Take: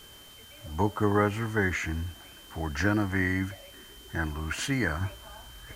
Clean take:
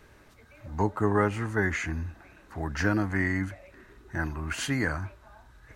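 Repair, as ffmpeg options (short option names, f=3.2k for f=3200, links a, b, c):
-af "bandreject=f=3.1k:w=30,afwtdn=0.002,asetnsamples=n=441:p=0,asendcmd='5.01 volume volume -5dB',volume=0dB"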